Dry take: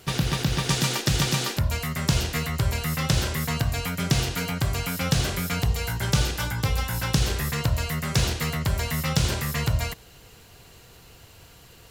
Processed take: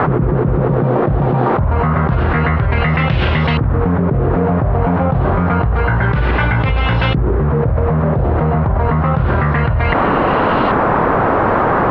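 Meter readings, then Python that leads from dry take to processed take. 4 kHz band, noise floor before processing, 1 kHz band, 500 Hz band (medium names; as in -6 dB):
-2.0 dB, -50 dBFS, +18.0 dB, +18.0 dB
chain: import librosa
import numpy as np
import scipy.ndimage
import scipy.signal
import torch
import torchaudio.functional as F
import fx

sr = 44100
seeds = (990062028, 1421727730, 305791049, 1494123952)

y = scipy.signal.sosfilt(scipy.signal.butter(4, 4300.0, 'lowpass', fs=sr, output='sos'), x)
y = fx.tilt_shelf(y, sr, db=4.0, hz=1500.0)
y = fx.filter_lfo_lowpass(y, sr, shape='saw_up', hz=0.28, low_hz=350.0, high_hz=3300.0, q=2.1)
y = fx.dmg_noise_band(y, sr, seeds[0], low_hz=110.0, high_hz=1300.0, level_db=-36.0)
y = fx.env_flatten(y, sr, amount_pct=100)
y = F.gain(torch.from_numpy(y), -1.0).numpy()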